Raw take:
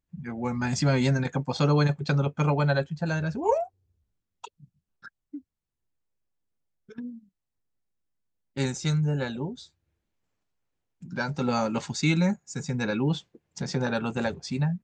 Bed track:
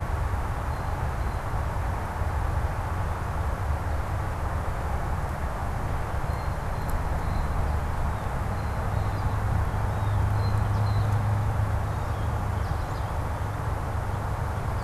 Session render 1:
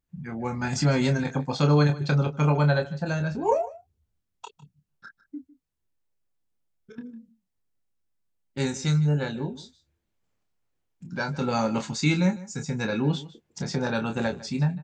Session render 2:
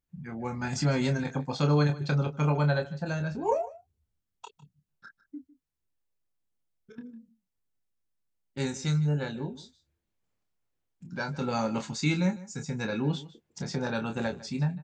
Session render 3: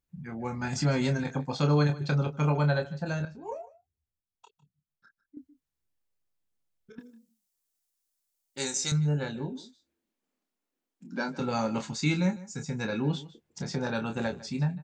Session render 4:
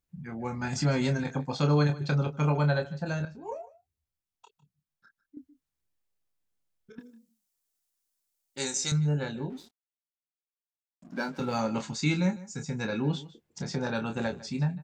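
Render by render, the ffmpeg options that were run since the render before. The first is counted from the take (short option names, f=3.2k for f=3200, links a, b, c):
-filter_complex "[0:a]asplit=2[a][b];[b]adelay=27,volume=-7dB[c];[a][c]amix=inputs=2:normalize=0,aecho=1:1:153:0.119"
-af "volume=-4dB"
-filter_complex "[0:a]asettb=1/sr,asplit=3[a][b][c];[a]atrim=end=6.994[d];[b]atrim=start=6.99:end=8.92,asetpts=PTS-STARTPTS,afade=t=in:d=0.004:c=qsin,afade=t=out:st=1.926:d=0.004:c=qsin,bass=f=250:g=-14,treble=f=4k:g=13[e];[c]atrim=start=8.916[f];[d][e]acrossfade=d=0.004:c1=hsin:c2=qsin[g];[g][f]acrossfade=d=0.004:c1=qsin:c2=hsin,asettb=1/sr,asplit=3[h][i][j];[h]atrim=end=9.524[k];[i]atrim=start=9.52:end=11.4,asetpts=PTS-STARTPTS,afade=t=in:d=0.004:c=qsin,afade=t=out:st=1.876:d=0.004:c=qsin,lowshelf=f=170:t=q:w=3:g=-12.5[l];[j]atrim=start=11.396[m];[k][l]acrossfade=d=0.004:c1=hsin:c2=qsin[n];[n][m]acrossfade=d=0.004:c1=qsin:c2=hsin,asplit=3[o][p][q];[o]atrim=end=3.252[r];[p]atrim=start=3.248:end=5.372,asetpts=PTS-STARTPTS,volume=-11dB[s];[q]atrim=start=5.368[t];[r][s]acrossfade=d=0.004:c1=hsin:c2=hsin[u];[u][t]acrossfade=d=0.004:c1=hsin:c2=hsin"
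-filter_complex "[0:a]asettb=1/sr,asplit=3[a][b][c];[a]atrim=end=9.504[d];[b]atrim=start=9.5:end=11.61,asetpts=PTS-STARTPTS,afade=t=in:d=0.004:c=qsin,afade=t=out:st=2.106:d=0.004:c=qsin,aeval=exprs='sgn(val(0))*max(abs(val(0))-0.00251,0)':c=same[e];[c]atrim=start=11.606[f];[d][e]acrossfade=d=0.004:c1=hsin:c2=qsin[g];[g][f]acrossfade=d=0.004:c1=qsin:c2=hsin"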